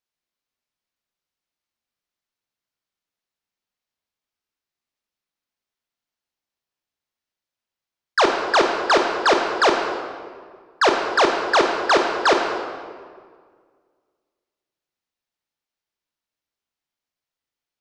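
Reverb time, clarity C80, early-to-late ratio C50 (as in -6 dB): 1.8 s, 5.0 dB, 4.0 dB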